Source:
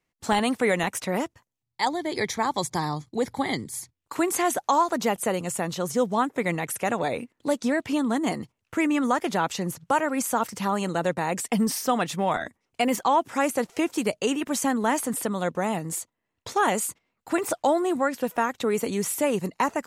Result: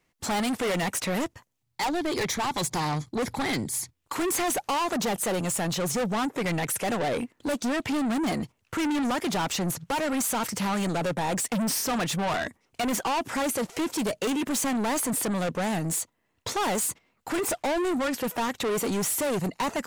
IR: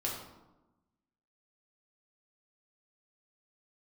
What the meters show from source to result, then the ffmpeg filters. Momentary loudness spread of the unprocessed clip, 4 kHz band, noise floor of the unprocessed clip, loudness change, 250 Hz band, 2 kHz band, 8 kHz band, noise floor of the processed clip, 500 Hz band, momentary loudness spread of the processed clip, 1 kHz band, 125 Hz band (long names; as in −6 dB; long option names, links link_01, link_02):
7 LU, +2.0 dB, −82 dBFS, −1.5 dB, −1.5 dB, −2.0 dB, +2.0 dB, −74 dBFS, −3.0 dB, 5 LU, −4.0 dB, +1.5 dB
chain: -af "apsyclip=15.5dB,asoftclip=type=tanh:threshold=-16.5dB,volume=-8dB"